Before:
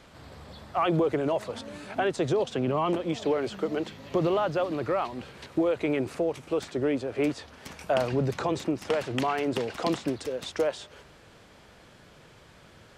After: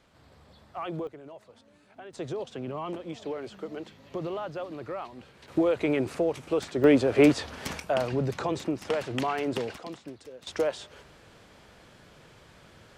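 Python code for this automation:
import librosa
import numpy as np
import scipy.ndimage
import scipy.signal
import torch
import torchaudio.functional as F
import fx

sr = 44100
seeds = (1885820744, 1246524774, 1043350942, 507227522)

y = fx.gain(x, sr, db=fx.steps((0.0, -10.0), (1.07, -19.0), (2.13, -8.5), (5.48, 1.0), (6.84, 8.0), (7.8, -1.5), (9.78, -13.0), (10.47, -0.5)))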